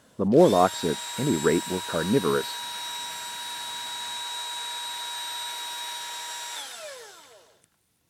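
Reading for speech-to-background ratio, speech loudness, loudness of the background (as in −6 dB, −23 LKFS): 9.0 dB, −23.5 LKFS, −32.5 LKFS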